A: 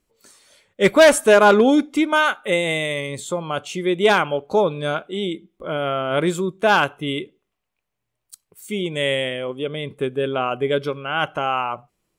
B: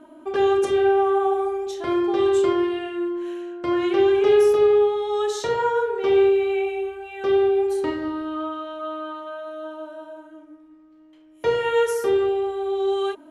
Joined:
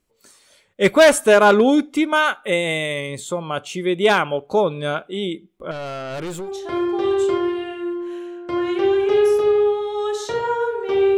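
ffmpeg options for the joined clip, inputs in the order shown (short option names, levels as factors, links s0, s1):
-filter_complex "[0:a]asettb=1/sr,asplit=3[s0][s1][s2];[s0]atrim=end=5.714[s3];[s1]atrim=start=5.71:end=6.5,asetpts=PTS-STARTPTS,afade=t=in:d=0.004:c=qsin,afade=t=out:st=0.786:d=0.004:c=qsin,aeval=exprs='(tanh(20*val(0)+0.3)-tanh(0.3))/20':c=same[s4];[s2]atrim=start=6.496[s5];[s3][s4]acrossfade=d=0.004:c1=hsin:c2=qsin[s6];[s6][s5]acrossfade=d=0.004:c1=qsin:c2=hsin,apad=whole_dur=11.17,atrim=end=11.17,atrim=end=6.5,asetpts=PTS-STARTPTS[s7];[1:a]atrim=start=1.55:end=6.32,asetpts=PTS-STARTPTS[s8];[s7][s8]acrossfade=d=0.1:c1=tri:c2=tri"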